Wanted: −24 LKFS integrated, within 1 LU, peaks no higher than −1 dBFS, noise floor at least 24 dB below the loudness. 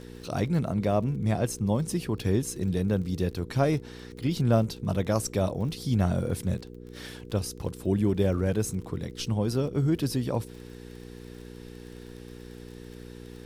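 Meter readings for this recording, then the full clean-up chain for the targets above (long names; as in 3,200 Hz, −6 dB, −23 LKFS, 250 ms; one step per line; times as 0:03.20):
crackle rate 32 per second; mains hum 60 Hz; hum harmonics up to 480 Hz; level of the hum −41 dBFS; integrated loudness −28.0 LKFS; sample peak −11.5 dBFS; target loudness −24.0 LKFS
→ click removal
hum removal 60 Hz, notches 8
level +4 dB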